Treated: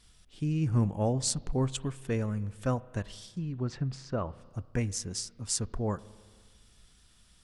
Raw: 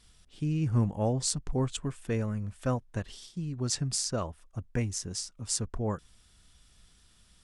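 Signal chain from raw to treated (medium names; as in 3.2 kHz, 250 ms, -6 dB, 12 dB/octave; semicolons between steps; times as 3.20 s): spring tank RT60 1.7 s, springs 30/38 ms, chirp 45 ms, DRR 18.5 dB; 3.25–4.45 s: low-pass that closes with the level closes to 2 kHz, closed at -27.5 dBFS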